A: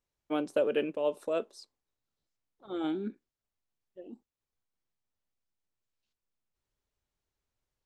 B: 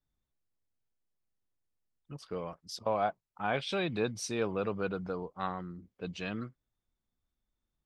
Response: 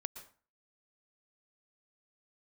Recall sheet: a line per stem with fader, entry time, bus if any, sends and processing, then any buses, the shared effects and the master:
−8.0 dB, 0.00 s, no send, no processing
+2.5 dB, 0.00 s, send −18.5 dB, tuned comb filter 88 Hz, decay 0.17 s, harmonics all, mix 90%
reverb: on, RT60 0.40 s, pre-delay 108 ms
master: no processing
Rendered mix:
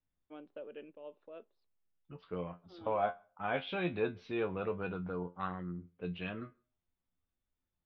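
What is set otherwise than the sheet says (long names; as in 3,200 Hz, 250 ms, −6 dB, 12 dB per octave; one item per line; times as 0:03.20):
stem A −8.0 dB → −19.0 dB
master: extra Butterworth low-pass 3,400 Hz 36 dB per octave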